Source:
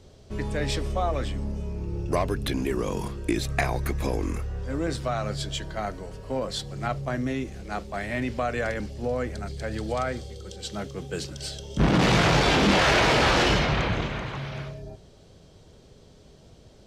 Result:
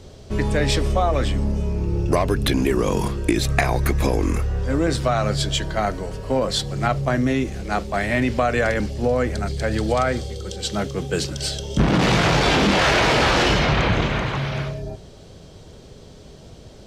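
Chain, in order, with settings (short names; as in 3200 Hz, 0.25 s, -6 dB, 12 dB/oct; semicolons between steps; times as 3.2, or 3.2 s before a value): compressor, threshold -23 dBFS, peak gain reduction 7.5 dB; gain +9 dB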